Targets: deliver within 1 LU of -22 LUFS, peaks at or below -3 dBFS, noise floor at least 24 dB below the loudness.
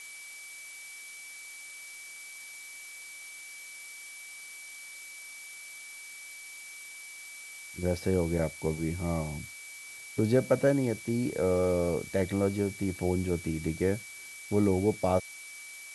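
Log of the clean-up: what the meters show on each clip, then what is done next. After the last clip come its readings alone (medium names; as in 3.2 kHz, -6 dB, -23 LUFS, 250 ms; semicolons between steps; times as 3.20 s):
steady tone 2.3 kHz; tone level -45 dBFS; noise floor -46 dBFS; noise floor target -57 dBFS; loudness -32.5 LUFS; peak level -13.0 dBFS; loudness target -22.0 LUFS
-> band-stop 2.3 kHz, Q 30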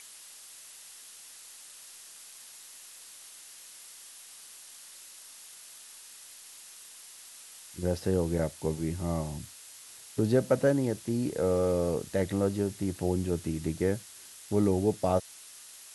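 steady tone not found; noise floor -50 dBFS; noise floor target -54 dBFS
-> noise print and reduce 6 dB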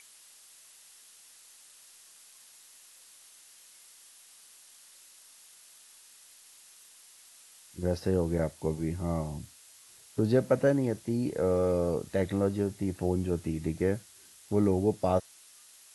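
noise floor -56 dBFS; loudness -30.0 LUFS; peak level -13.0 dBFS; loudness target -22.0 LUFS
-> trim +8 dB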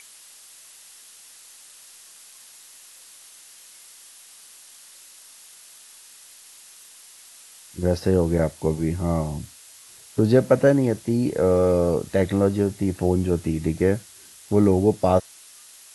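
loudness -22.0 LUFS; peak level -5.0 dBFS; noise floor -48 dBFS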